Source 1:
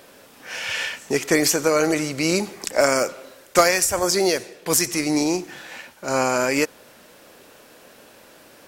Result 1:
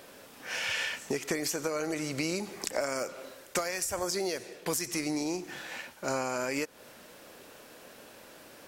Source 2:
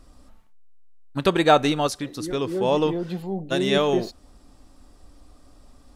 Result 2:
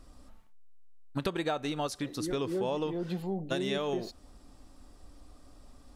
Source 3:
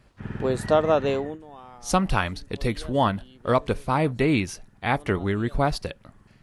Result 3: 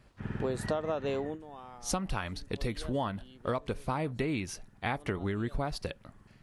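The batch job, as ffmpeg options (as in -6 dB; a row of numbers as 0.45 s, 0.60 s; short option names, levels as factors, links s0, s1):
-af "acompressor=threshold=0.0562:ratio=12,volume=0.708"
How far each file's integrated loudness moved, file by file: -12.0 LU, -10.5 LU, -10.0 LU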